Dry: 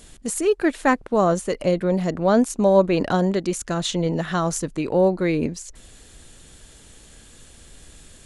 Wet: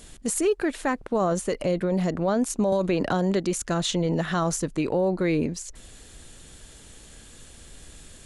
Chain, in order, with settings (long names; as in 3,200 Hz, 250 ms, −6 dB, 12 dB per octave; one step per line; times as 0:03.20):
brickwall limiter −15.5 dBFS, peak gain reduction 11.5 dB
0:02.72–0:03.46: multiband upward and downward compressor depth 70%